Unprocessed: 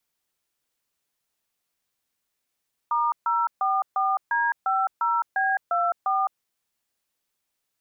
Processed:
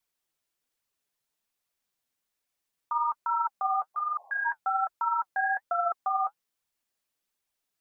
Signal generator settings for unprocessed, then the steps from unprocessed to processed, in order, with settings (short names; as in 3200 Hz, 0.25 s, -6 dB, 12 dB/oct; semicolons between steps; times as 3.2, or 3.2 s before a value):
DTMF "*044D50B24", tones 0.211 s, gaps 0.139 s, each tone -23 dBFS
spectral repair 3.98–4.43, 420–1100 Hz before; flange 1.2 Hz, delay 0.8 ms, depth 7.5 ms, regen +48%